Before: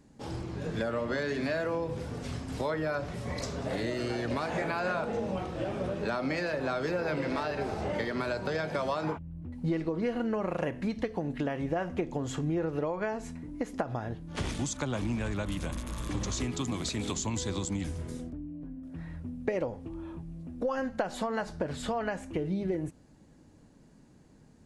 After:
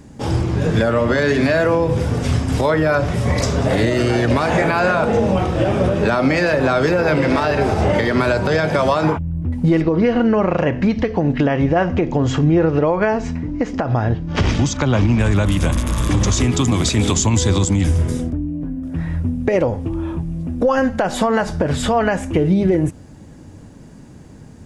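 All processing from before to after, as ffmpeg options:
-filter_complex "[0:a]asettb=1/sr,asplit=3[a][b][c];[a]atrim=end=9.814[d];[b]atrim=start=9.81:end=15.19,asetpts=PTS-STARTPTS,afade=t=in:d=0.004:c=qsin,afade=t=out:st=5.376:d=0.004:c=qsin,lowpass=f=5.8k:w=0.5412,lowpass=f=5.8k:w=1.3066,bandreject=f=3.5k:w=18[e];[c]atrim=start=15.186[f];[d][e]acrossfade=d=0.004:c1=hsin:c2=qsin[g];[g][f]acrossfade=d=0.004:c1=qsin:c2=hsin,equalizer=f=92:w=1.5:g=6.5,bandreject=f=4.2k:w=12,alimiter=level_in=22dB:limit=-1dB:release=50:level=0:latency=1,volume=-6dB"

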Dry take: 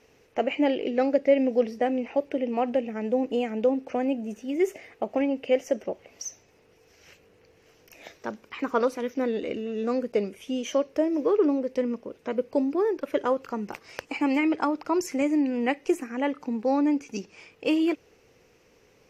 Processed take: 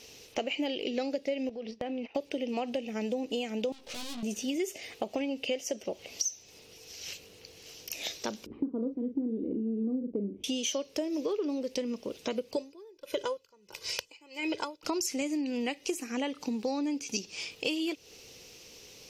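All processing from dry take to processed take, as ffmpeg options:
-filter_complex "[0:a]asettb=1/sr,asplit=3[a][b][c];[a]atrim=end=1.494[d];[b]atrim=start=1.49:end=2.15,asetpts=PTS-STARTPTS,afade=t=in:d=0.004:c=qsin,afade=t=out:st=0.656:d=0.004:c=qsin,agate=range=-20dB:threshold=-36dB:ratio=16:release=100:detection=peak,lowpass=3.1k,acompressor=threshold=-35dB:ratio=4:attack=3.2:release=140:knee=1:detection=peak[e];[c]atrim=start=2.146[f];[d][e]acrossfade=d=0.004:c1=hsin:c2=qsin[g];[g][f]acrossfade=d=0.004:c1=qsin:c2=hsin,asettb=1/sr,asplit=3[h][i][j];[h]atrim=end=3.724[k];[i]atrim=start=3.72:end=4.23,asetpts=PTS-STARTPTS,afade=t=in:d=0.004:c=qsin,afade=t=out:st=0.506:d=0.004:c=qsin,aeval=exprs='(tanh(178*val(0)+0.4)-tanh(0.4))/178':c=same,asplit=2[l][m];[m]adelay=17,volume=-4dB[n];[l][n]amix=inputs=2:normalize=0,atrim=end_sample=22491[o];[j]atrim=start=4.226[p];[k][o]acrossfade=d=0.004:c1=hsin:c2=qsin[q];[q][p]acrossfade=d=0.004:c1=qsin:c2=hsin,asettb=1/sr,asplit=3[r][s][t];[r]atrim=end=8.464[u];[s]atrim=start=8.46:end=10.44,asetpts=PTS-STARTPTS,afade=t=in:d=0.004:c=qsin,afade=t=out:st=1.976:d=0.004:c=qsin,acompressor=mode=upward:threshold=-39dB:ratio=2.5:attack=3.2:release=140:knee=2.83:detection=peak,lowpass=f=290:t=q:w=2.7,asplit=2[v][w];[w]adelay=40,volume=-8.5dB[x];[v][x]amix=inputs=2:normalize=0,atrim=end_sample=87318[y];[t]atrim=start=10.436[z];[u][y]acrossfade=d=0.004:c1=hsin:c2=qsin[aa];[aa][z]acrossfade=d=0.004:c1=qsin:c2=hsin,asettb=1/sr,asplit=3[ab][ac][ad];[ab]atrim=end=12.564[ae];[ac]atrim=start=12.56:end=14.83,asetpts=PTS-STARTPTS,afade=t=in:d=0.004:c=qsin,afade=t=out:st=2.266:d=0.004:c=qsin,aecho=1:1:2:0.73,atrim=end_sample=100107,aeval=exprs='val(0)*pow(10,-34*(0.5-0.5*cos(2*PI*1.5*n/s))/20)':c=same[af];[ad]atrim=start=14.826[ag];[ae][af]acrossfade=d=0.004:c1=hsin:c2=qsin[ah];[ah][ag]acrossfade=d=0.004:c1=qsin:c2=hsin,highshelf=f=2.5k:t=q:w=1.5:g=12.5,acompressor=threshold=-33dB:ratio=6,volume=3dB"

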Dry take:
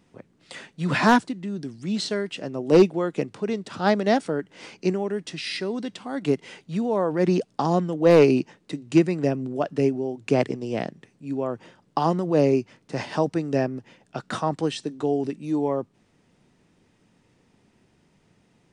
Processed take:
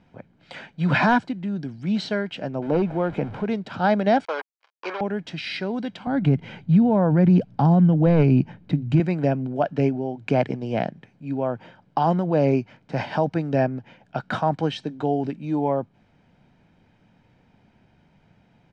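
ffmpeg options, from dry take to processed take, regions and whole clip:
-filter_complex "[0:a]asettb=1/sr,asplit=3[a][b][c];[a]atrim=end=2.624[d];[b]atrim=start=2.62:end=3.46,asetpts=PTS-STARTPTS,afade=t=in:d=0.004:c=qsin,afade=t=out:st=0.836:d=0.004:c=qsin,aeval=exprs='val(0)+0.5*0.0178*sgn(val(0))':c=same,equalizer=f=7.3k:t=o:w=2.6:g=-11,acompressor=threshold=-18dB:ratio=4:attack=3.2:release=140:knee=1:detection=peak[e];[c]atrim=start=3.456[f];[d][e]acrossfade=d=0.004:c1=hsin:c2=qsin[g];[g][f]acrossfade=d=0.004:c1=qsin:c2=hsin,asettb=1/sr,asplit=3[h][i][j];[h]atrim=end=4.254[k];[i]atrim=start=4.25:end=5.01,asetpts=PTS-STARTPTS,afade=t=in:d=0.004:c=qsin,afade=t=out:st=0.756:d=0.004:c=qsin,acrusher=bits=4:mix=0:aa=0.5,highpass=f=460:w=0.5412,highpass=f=460:w=1.3066,equalizer=f=700:t=q:w=4:g=-4,equalizer=f=1.1k:t=q:w=4:g=10,equalizer=f=3.7k:t=q:w=4:g=-3,lowpass=f=5.7k:w=0.5412,lowpass=f=5.7k:w=1.3066[l];[j]atrim=start=5.006[m];[k][l]acrossfade=d=0.004:c1=hsin:c2=qsin[n];[n][m]acrossfade=d=0.004:c1=qsin:c2=hsin,asettb=1/sr,asplit=3[o][p][q];[o]atrim=end=6.074[r];[p]atrim=start=6.07:end=9,asetpts=PTS-STARTPTS,afade=t=in:d=0.004:c=qsin,afade=t=out:st=2.926:d=0.004:c=qsin,bass=f=250:g=15,treble=f=4k:g=-5,acompressor=threshold=-19dB:ratio=1.5:attack=3.2:release=140:knee=1:detection=peak[s];[q]atrim=start=8.996[t];[r][s]acrossfade=d=0.004:c1=hsin:c2=qsin[u];[u][t]acrossfade=d=0.004:c1=qsin:c2=hsin,lowpass=3.1k,aecho=1:1:1.3:0.46,alimiter=level_in=11.5dB:limit=-1dB:release=50:level=0:latency=1,volume=-8.5dB"

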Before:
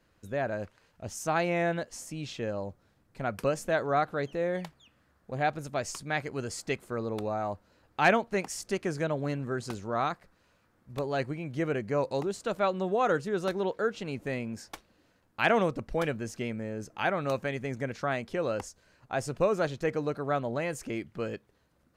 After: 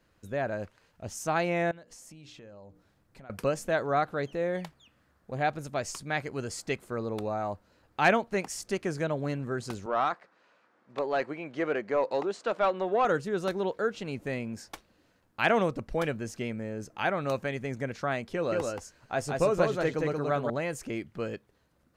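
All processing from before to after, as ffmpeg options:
-filter_complex "[0:a]asettb=1/sr,asplit=3[a][b][c];[a]atrim=end=1.714[d];[b]atrim=start=1.71:end=3.3,asetpts=PTS-STARTPTS,afade=t=in:d=0.004:c=qsin,afade=t=out:st=1.586:d=0.004:c=qsin,bandreject=f=60:t=h:w=6,bandreject=f=120:t=h:w=6,bandreject=f=180:t=h:w=6,bandreject=f=240:t=h:w=6,bandreject=f=300:t=h:w=6,bandreject=f=360:t=h:w=6,bandreject=f=420:t=h:w=6,bandreject=f=480:t=h:w=6,acompressor=threshold=-47dB:ratio=6:attack=3.2:release=140:knee=1:detection=peak[e];[c]atrim=start=3.296[f];[d][e]acrossfade=d=0.004:c1=hsin:c2=qsin[g];[g][f]acrossfade=d=0.004:c1=qsin:c2=hsin,asettb=1/sr,asplit=3[h][i][j];[h]atrim=end=9.864[k];[i]atrim=start=9.86:end=13.05,asetpts=PTS-STARTPTS,afade=t=in:d=0.004:c=qsin,afade=t=out:st=3.186:d=0.004:c=qsin,highpass=230,lowpass=7.9k,asplit=2[l][m];[m]highpass=f=720:p=1,volume=12dB,asoftclip=type=tanh:threshold=-15dB[n];[l][n]amix=inputs=2:normalize=0,lowpass=f=1.8k:p=1,volume=-6dB[o];[j]atrim=start=13.046[p];[k][o]acrossfade=d=0.004:c1=hsin:c2=qsin[q];[q][p]acrossfade=d=0.004:c1=qsin:c2=hsin,asettb=1/sr,asplit=3[r][s][t];[r]atrim=end=18.334[u];[s]atrim=start=18.33:end=20.5,asetpts=PTS-STARTPTS,afade=t=in:d=0.004:c=qsin,afade=t=out:st=2.166:d=0.004:c=qsin,asplit=2[v][w];[w]adelay=12,volume=-11.5dB[x];[v][x]amix=inputs=2:normalize=0,atrim=end_sample=95697,aecho=1:1:178:0.708,atrim=end_sample=95697[y];[t]atrim=start=20.496[z];[u][y]acrossfade=d=0.004:c1=hsin:c2=qsin[aa];[aa][z]acrossfade=d=0.004:c1=qsin:c2=hsin"

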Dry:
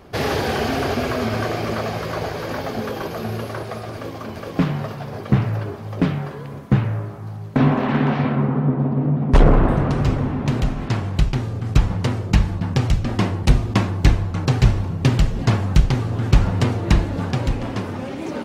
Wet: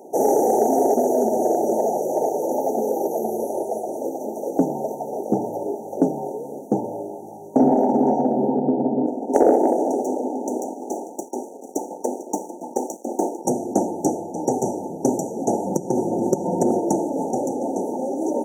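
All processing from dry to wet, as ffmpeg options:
-filter_complex "[0:a]asettb=1/sr,asplit=3[a][b][c];[a]atrim=end=9.064[d];[b]atrim=start=9.06:end=13.45,asetpts=PTS-STARTPTS,afade=t=in:d=0.004:c=qsin,afade=t=out:st=4.386:d=0.004:c=qsin,highpass=f=250:w=0.5412,highpass=f=250:w=1.3066,aeval=exprs='sgn(val(0))*max(abs(val(0))-0.0126,0)':c=same,aecho=1:1:448:0.168,atrim=end_sample=193599[e];[c]atrim=start=13.446[f];[d][e]acrossfade=d=0.004:c1=hsin:c2=qsin[g];[g][f]acrossfade=d=0.004:c1=qsin:c2=hsin,asettb=1/sr,asplit=3[h][i][j];[h]atrim=end=15.664[k];[i]atrim=start=15.66:end=16.8,asetpts=PTS-STARTPTS,afade=t=in:d=0.004:c=qsin,afade=t=out:st=1.136:d=0.004:c=qsin,lowshelf=f=330:g=9,acompressor=threshold=-10dB:ratio=5:attack=3.2:release=140:knee=1:detection=peak,aecho=1:1:5.6:0.39,atrim=end_sample=50274[l];[j]atrim=start=16.796[m];[k][l]acrossfade=d=0.004:c1=hsin:c2=qsin[n];[n][m]acrossfade=d=0.004:c1=qsin:c2=hsin,highpass=f=280:w=0.5412,highpass=f=280:w=1.3066,afftfilt=real='re*(1-between(b*sr/4096,930,5700))':imag='im*(1-between(b*sr/4096,930,5700))':win_size=4096:overlap=0.75,acontrast=69"

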